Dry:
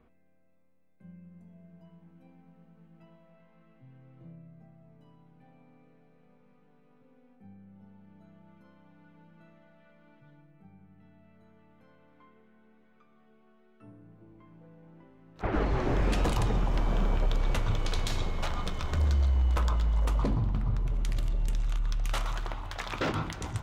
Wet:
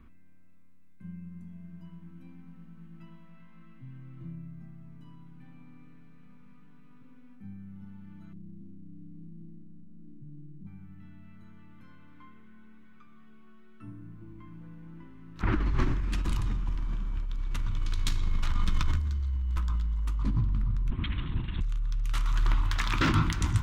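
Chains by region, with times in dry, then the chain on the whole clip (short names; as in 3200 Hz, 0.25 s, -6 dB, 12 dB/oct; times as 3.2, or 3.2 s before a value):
8.33–10.67 inverse Chebyshev low-pass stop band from 810 Hz + sample leveller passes 1
20.9–21.61 LPC vocoder at 8 kHz whisper + expander -27 dBFS + HPF 210 Hz 6 dB/oct
whole clip: low shelf 85 Hz +9.5 dB; negative-ratio compressor -26 dBFS, ratio -1; band shelf 580 Hz -14 dB 1.2 oct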